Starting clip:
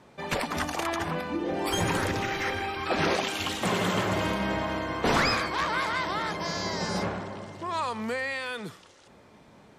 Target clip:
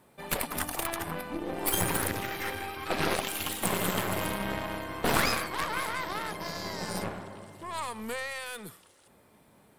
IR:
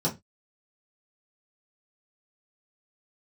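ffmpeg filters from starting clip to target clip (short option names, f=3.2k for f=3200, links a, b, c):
-af "aexciter=amount=8.5:drive=3.6:freq=8.7k,aeval=exprs='0.376*(cos(1*acos(clip(val(0)/0.376,-1,1)))-cos(1*PI/2))+0.075*(cos(4*acos(clip(val(0)/0.376,-1,1)))-cos(4*PI/2))+0.0237*(cos(7*acos(clip(val(0)/0.376,-1,1)))-cos(7*PI/2))':c=same,volume=-1.5dB"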